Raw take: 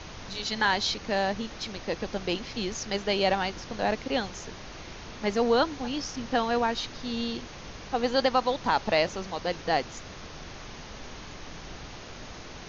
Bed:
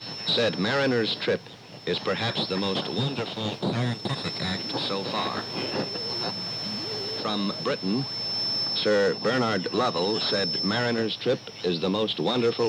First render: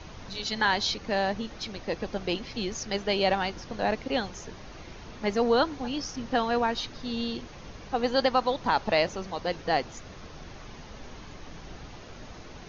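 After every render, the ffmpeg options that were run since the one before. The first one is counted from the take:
-af "afftdn=nr=6:nf=-43"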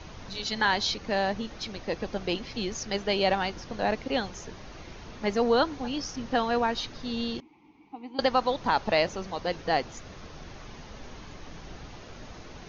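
-filter_complex "[0:a]asettb=1/sr,asplit=3[s0][s1][s2];[s0]atrim=end=7.404[s3];[s1]atrim=start=7.4:end=8.19,asetpts=PTS-STARTPTS,afade=t=in:d=0.004:c=qsin,afade=t=out:st=0.786:d=0.004:c=qsin,asplit=3[s4][s5][s6];[s4]bandpass=f=300:t=q:w=8,volume=1[s7];[s5]bandpass=f=870:t=q:w=8,volume=0.501[s8];[s6]bandpass=f=2240:t=q:w=8,volume=0.355[s9];[s7][s8][s9]amix=inputs=3:normalize=0[s10];[s2]atrim=start=8.186[s11];[s3][s10]acrossfade=d=0.004:c1=hsin:c2=qsin[s12];[s12][s11]acrossfade=d=0.004:c1=qsin:c2=hsin"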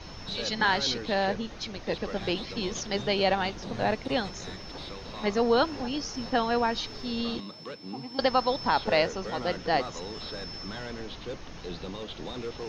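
-filter_complex "[1:a]volume=0.211[s0];[0:a][s0]amix=inputs=2:normalize=0"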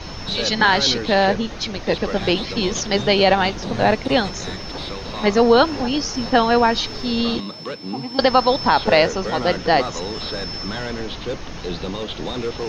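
-af "volume=3.35,alimiter=limit=0.708:level=0:latency=1"

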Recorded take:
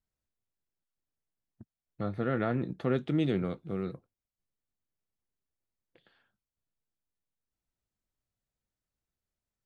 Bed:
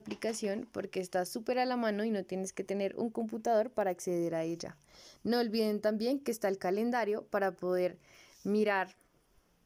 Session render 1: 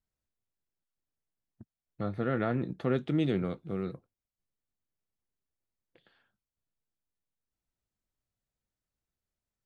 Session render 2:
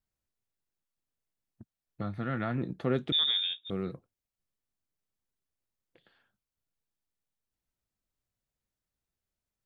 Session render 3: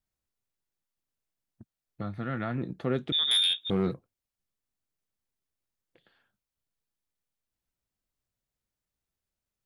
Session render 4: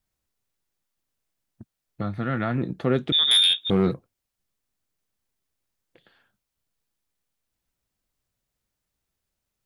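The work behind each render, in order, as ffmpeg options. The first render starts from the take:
-af anull
-filter_complex "[0:a]asettb=1/sr,asplit=3[s0][s1][s2];[s0]atrim=end=2.024[s3];[s1]atrim=start=2.02:end=2.58,asetpts=PTS-STARTPTS,afade=t=in:d=0.004:c=qsin,afade=t=out:st=0.556:d=0.004:c=qsin,equalizer=f=440:w=1.9:g=-11.5[s4];[s2]atrim=start=2.576[s5];[s3][s4]acrossfade=d=0.004:c1=hsin:c2=qsin[s6];[s6][s5]acrossfade=d=0.004:c1=qsin:c2=hsin,asettb=1/sr,asplit=3[s7][s8][s9];[s7]atrim=end=3.124[s10];[s8]atrim=start=3.12:end=3.7,asetpts=PTS-STARTPTS,afade=t=in:d=0.004:c=qsin,afade=t=out:st=0.576:d=0.004:c=qsin,lowpass=f=3200:t=q:w=0.5098,lowpass=f=3200:t=q:w=0.6013,lowpass=f=3200:t=q:w=0.9,lowpass=f=3200:t=q:w=2.563,afreqshift=-3800[s11];[s9]atrim=start=3.696[s12];[s10][s11]acrossfade=d=0.004:c1=hsin:c2=qsin[s13];[s13][s12]acrossfade=d=0.004:c1=qsin:c2=hsin"
-filter_complex "[0:a]asettb=1/sr,asplit=3[s0][s1][s2];[s0]atrim=end=3.314[s3];[s1]atrim=start=3.31:end=3.94,asetpts=PTS-STARTPTS,afade=t=in:d=0.004:c=qsin,afade=t=out:st=0.626:d=0.004:c=qsin,aeval=exprs='0.1*sin(PI/2*1.78*val(0)/0.1)':c=same[s4];[s2]atrim=start=3.936[s5];[s3][s4]acrossfade=d=0.004:c1=hsin:c2=qsin[s6];[s6][s5]acrossfade=d=0.004:c1=qsin:c2=hsin"
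-af "volume=2.11"

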